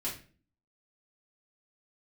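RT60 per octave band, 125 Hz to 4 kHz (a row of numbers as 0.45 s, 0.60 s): 0.60 s, 0.65 s, 0.45 s, 0.35 s, 0.40 s, 0.35 s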